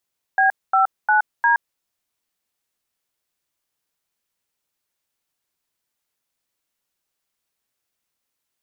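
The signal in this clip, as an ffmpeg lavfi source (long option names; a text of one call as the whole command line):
ffmpeg -f lavfi -i "aevalsrc='0.168*clip(min(mod(t,0.353),0.121-mod(t,0.353))/0.002,0,1)*(eq(floor(t/0.353),0)*(sin(2*PI*770*mod(t,0.353))+sin(2*PI*1633*mod(t,0.353)))+eq(floor(t/0.353),1)*(sin(2*PI*770*mod(t,0.353))+sin(2*PI*1336*mod(t,0.353)))+eq(floor(t/0.353),2)*(sin(2*PI*852*mod(t,0.353))+sin(2*PI*1477*mod(t,0.353)))+eq(floor(t/0.353),3)*(sin(2*PI*941*mod(t,0.353))+sin(2*PI*1633*mod(t,0.353))))':duration=1.412:sample_rate=44100" out.wav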